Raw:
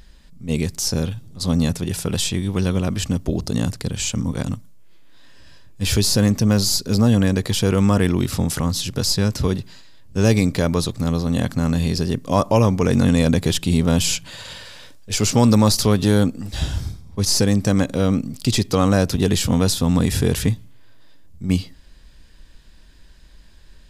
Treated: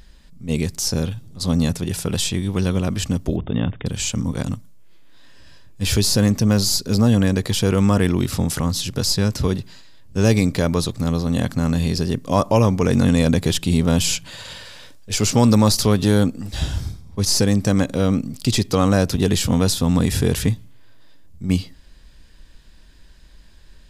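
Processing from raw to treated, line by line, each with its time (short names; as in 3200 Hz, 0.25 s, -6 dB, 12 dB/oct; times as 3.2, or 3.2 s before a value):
3.36–3.86 brick-wall FIR low-pass 3700 Hz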